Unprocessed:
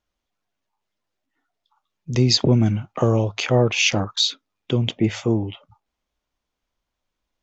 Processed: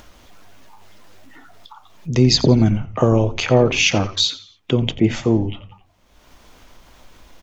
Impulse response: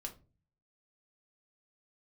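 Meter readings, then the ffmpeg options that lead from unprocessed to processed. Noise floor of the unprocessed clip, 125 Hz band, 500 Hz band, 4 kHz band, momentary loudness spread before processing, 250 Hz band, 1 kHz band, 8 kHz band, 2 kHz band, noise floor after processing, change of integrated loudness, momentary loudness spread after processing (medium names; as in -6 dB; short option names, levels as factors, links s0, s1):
-82 dBFS, +2.5 dB, +4.0 dB, +2.0 dB, 7 LU, +4.0 dB, +3.5 dB, no reading, +2.5 dB, -55 dBFS, +3.0 dB, 9 LU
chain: -filter_complex "[0:a]asplit=4[s0][s1][s2][s3];[s1]adelay=87,afreqshift=-97,volume=0.158[s4];[s2]adelay=174,afreqshift=-194,volume=0.0537[s5];[s3]adelay=261,afreqshift=-291,volume=0.0184[s6];[s0][s4][s5][s6]amix=inputs=4:normalize=0,acompressor=mode=upward:threshold=0.0447:ratio=2.5,asplit=2[s7][s8];[1:a]atrim=start_sample=2205,lowpass=2800[s9];[s8][s9]afir=irnorm=-1:irlink=0,volume=0.376[s10];[s7][s10]amix=inputs=2:normalize=0,volume=1.26"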